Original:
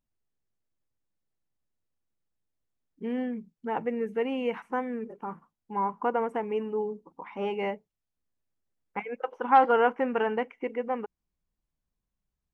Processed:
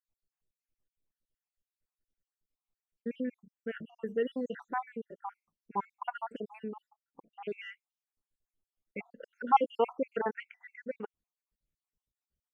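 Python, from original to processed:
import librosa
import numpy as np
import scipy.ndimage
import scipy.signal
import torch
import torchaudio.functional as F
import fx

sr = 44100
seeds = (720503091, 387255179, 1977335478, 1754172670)

y = fx.spec_dropout(x, sr, seeds[0], share_pct=72)
y = fx.lowpass(y, sr, hz=fx.line((6.89, 1700.0), (7.47, 2500.0)), slope=24, at=(6.89, 7.47), fade=0.02)
y = y * 10.0 ** (-1.5 / 20.0)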